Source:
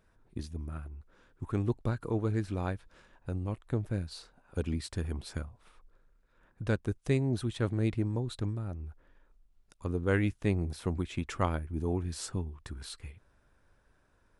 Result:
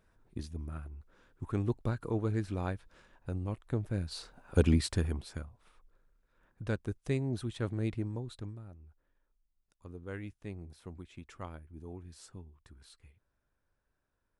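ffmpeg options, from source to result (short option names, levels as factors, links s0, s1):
-af "volume=2.66,afade=t=in:st=3.93:d=0.73:silence=0.316228,afade=t=out:st=4.66:d=0.61:silence=0.237137,afade=t=out:st=7.93:d=0.85:silence=0.316228"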